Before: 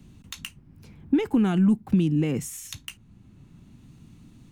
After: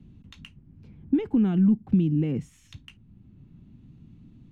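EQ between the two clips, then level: FFT filter 230 Hz 0 dB, 1.1 kHz -10 dB, 3.2 kHz -9 dB, 12 kHz -29 dB; 0.0 dB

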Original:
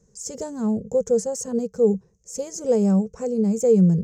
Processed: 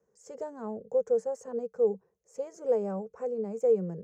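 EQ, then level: high-pass 53 Hz; three-band isolator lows -19 dB, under 380 Hz, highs -20 dB, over 2.1 kHz; -3.5 dB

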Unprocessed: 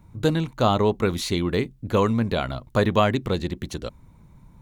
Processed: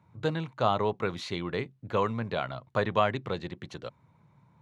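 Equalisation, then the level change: high-pass 120 Hz 24 dB/octave; tape spacing loss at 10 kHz 22 dB; peaking EQ 250 Hz -12 dB 1.8 oct; 0.0 dB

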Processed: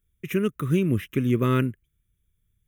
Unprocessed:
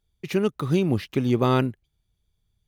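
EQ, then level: treble shelf 9.5 kHz +9 dB; static phaser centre 1.9 kHz, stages 4; +1.0 dB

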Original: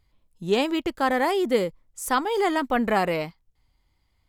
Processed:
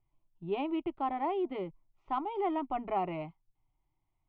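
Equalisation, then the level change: steep low-pass 2.7 kHz 36 dB/octave; static phaser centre 330 Hz, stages 8; -7.0 dB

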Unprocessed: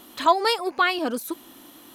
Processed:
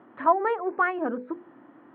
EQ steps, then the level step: elliptic band-pass 110–1800 Hz, stop band 60 dB; distance through air 330 m; hum notches 50/100/150/200/250/300/350/400/450/500 Hz; 0.0 dB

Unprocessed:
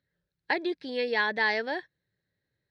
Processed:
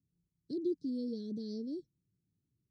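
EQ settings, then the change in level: inverse Chebyshev band-stop 780–2700 Hz, stop band 60 dB; low-pass 5 kHz 12 dB/octave; bass shelf 63 Hz -8 dB; +4.5 dB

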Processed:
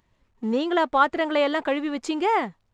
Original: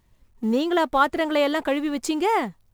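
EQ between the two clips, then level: tape spacing loss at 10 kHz 27 dB; tilt EQ +2.5 dB/octave; peaking EQ 7.1 kHz +3 dB 0.25 oct; +3.0 dB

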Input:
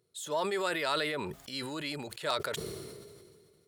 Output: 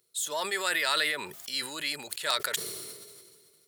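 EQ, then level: tilt EQ +3.5 dB/octave; dynamic bell 1.8 kHz, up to +6 dB, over -47 dBFS, Q 3.3; 0.0 dB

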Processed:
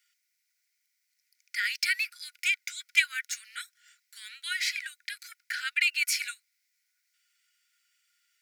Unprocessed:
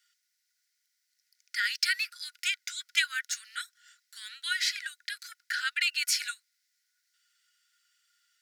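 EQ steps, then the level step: tilt EQ +4 dB/octave; tilt shelf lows +6.5 dB, about 1.3 kHz; peaking EQ 2.3 kHz +12 dB 0.45 oct; -6.5 dB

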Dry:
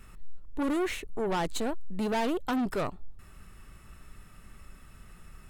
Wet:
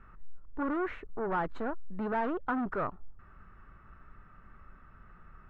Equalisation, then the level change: resonant low-pass 1.4 kHz, resonance Q 2.5; -4.5 dB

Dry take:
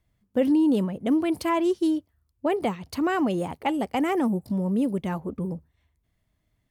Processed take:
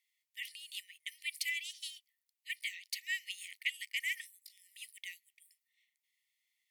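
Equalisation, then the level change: brick-wall FIR high-pass 1.8 kHz; +1.0 dB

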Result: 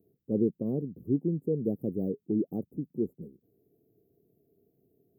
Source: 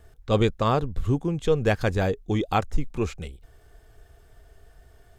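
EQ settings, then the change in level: high-pass 170 Hz 24 dB/octave; inverse Chebyshev band-stop 1.6–5.1 kHz, stop band 80 dB; 0.0 dB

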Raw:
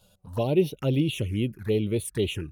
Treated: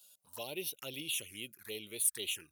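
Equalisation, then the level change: differentiator; +4.5 dB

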